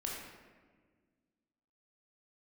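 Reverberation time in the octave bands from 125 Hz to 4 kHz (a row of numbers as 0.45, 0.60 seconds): 2.2, 2.3, 1.8, 1.4, 1.3, 0.85 seconds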